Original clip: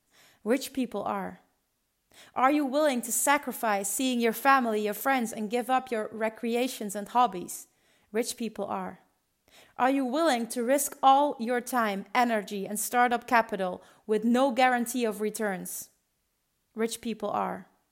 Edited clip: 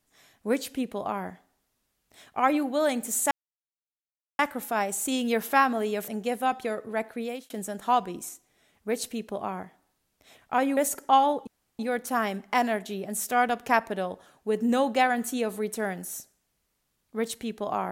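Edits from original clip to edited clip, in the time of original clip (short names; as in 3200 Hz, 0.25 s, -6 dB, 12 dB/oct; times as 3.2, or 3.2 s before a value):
3.31 insert silence 1.08 s
5–5.35 cut
6.37–6.77 fade out
10.04–10.71 cut
11.41 insert room tone 0.32 s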